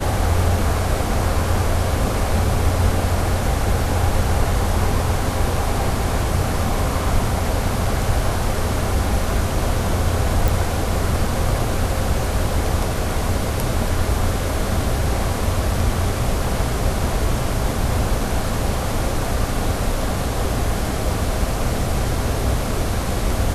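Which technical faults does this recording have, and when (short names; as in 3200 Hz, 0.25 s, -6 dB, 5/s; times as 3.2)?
10.48 pop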